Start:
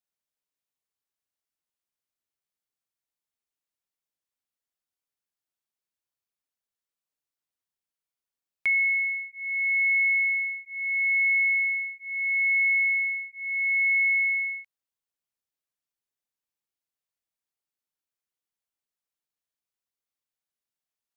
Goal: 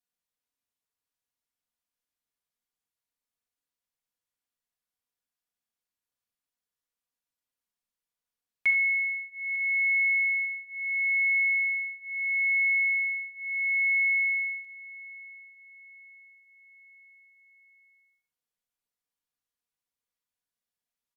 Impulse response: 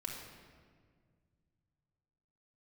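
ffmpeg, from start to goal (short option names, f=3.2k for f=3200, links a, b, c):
-filter_complex "[0:a]aecho=1:1:898|1796|2694|3592:0.126|0.0617|0.0302|0.0148[a];[1:a]atrim=start_sample=2205,atrim=end_sample=3087,asetrate=32634,aresample=44100[b];[a][b]afir=irnorm=-1:irlink=0"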